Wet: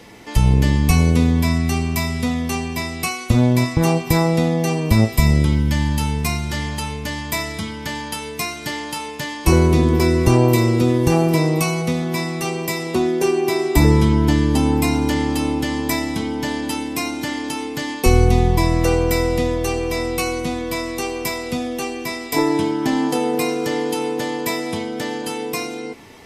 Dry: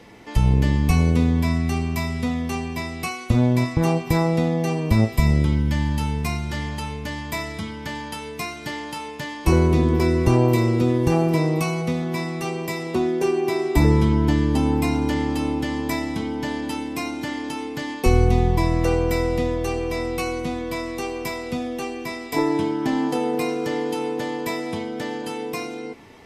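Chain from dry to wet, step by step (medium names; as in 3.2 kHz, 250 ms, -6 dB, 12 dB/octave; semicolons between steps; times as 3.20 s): treble shelf 4.4 kHz +8 dB; trim +3 dB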